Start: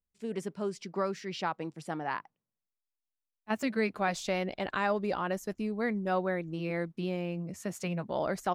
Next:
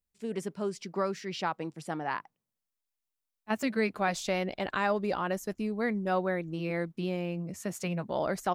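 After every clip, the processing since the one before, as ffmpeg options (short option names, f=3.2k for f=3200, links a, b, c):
-af "highshelf=f=8.4k:g=4,volume=1dB"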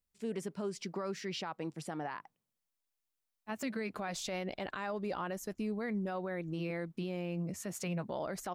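-af "alimiter=level_in=5dB:limit=-24dB:level=0:latency=1:release=111,volume=-5dB"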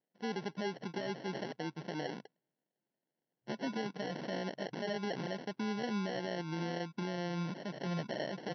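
-af "acrusher=samples=36:mix=1:aa=0.000001,afftfilt=real='re*between(b*sr/4096,120,6000)':imag='im*between(b*sr/4096,120,6000)':win_size=4096:overlap=0.75"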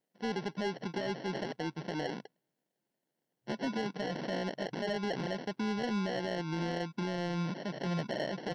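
-af "asoftclip=type=tanh:threshold=-28.5dB,volume=4dB"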